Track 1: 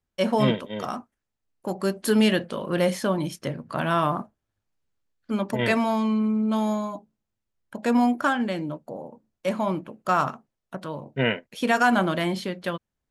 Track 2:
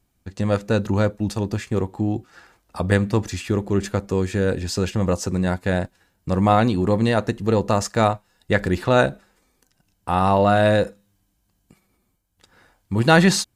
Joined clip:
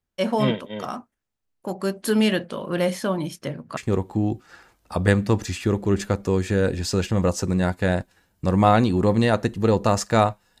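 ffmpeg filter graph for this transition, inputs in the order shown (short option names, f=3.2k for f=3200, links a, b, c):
-filter_complex "[0:a]apad=whole_dur=10.6,atrim=end=10.6,atrim=end=3.772[a];[1:a]atrim=start=1.608:end=8.44[b];[a][b]acrossfade=d=0.004:c1=hsin:c2=hsin"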